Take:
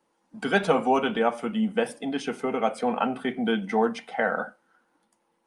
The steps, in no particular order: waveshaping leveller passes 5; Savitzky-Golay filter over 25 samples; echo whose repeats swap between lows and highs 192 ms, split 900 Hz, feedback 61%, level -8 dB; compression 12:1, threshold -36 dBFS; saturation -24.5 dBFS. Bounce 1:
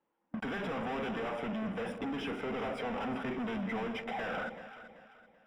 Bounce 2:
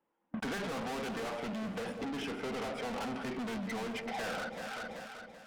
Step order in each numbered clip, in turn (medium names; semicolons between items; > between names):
waveshaping leveller > saturation > Savitzky-Golay filter > compression > echo whose repeats swap between lows and highs; waveshaping leveller > Savitzky-Golay filter > saturation > echo whose repeats swap between lows and highs > compression